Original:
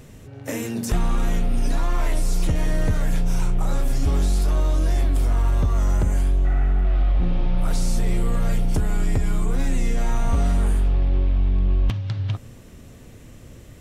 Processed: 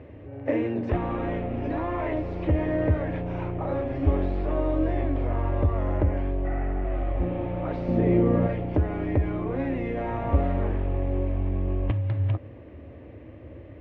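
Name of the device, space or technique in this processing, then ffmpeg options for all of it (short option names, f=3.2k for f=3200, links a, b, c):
bass cabinet: -filter_complex "[0:a]asettb=1/sr,asplit=3[a][b][c];[a]atrim=end=7.884[d];[b]atrim=start=7.88:end=8.47,asetpts=PTS-STARTPTS,afade=t=in:d=0.004:c=qsin,afade=t=out:st=0.586:d=0.004:c=qsin,equalizer=f=230:w=0.69:g=11[e];[c]atrim=start=8.466[f];[d][e]acrossfade=d=0.004:c1=hsin:c2=qsin[g];[g][f]acrossfade=d=0.004:c1=qsin:c2=hsin,highpass=f=61:w=0.5412,highpass=f=61:w=1.3066,equalizer=f=81:t=q:w=4:g=5,equalizer=f=150:t=q:w=4:g=-9,equalizer=f=210:t=q:w=4:g=-7,equalizer=f=310:t=q:w=4:g=9,equalizer=f=570:t=q:w=4:g=8,equalizer=f=1.4k:t=q:w=4:g=-7,lowpass=f=2.3k:w=0.5412,lowpass=f=2.3k:w=1.3066"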